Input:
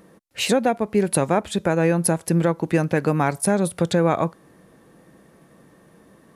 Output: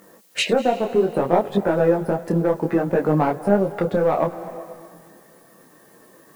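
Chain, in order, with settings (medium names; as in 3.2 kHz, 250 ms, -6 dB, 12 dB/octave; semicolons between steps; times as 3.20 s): spectral gate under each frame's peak -25 dB strong; low-pass that closes with the level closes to 970 Hz, closed at -20 dBFS; high-pass 420 Hz 6 dB/octave; treble shelf 8.3 kHz +12 dB; waveshaping leveller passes 1; in parallel at +2 dB: compression, threshold -24 dBFS, peak gain reduction 8 dB; on the sum: added noise blue -55 dBFS; on a send at -13.5 dB: reverberation RT60 2.1 s, pre-delay 186 ms; on the sum: detune thickener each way 22 cents; trim +2 dB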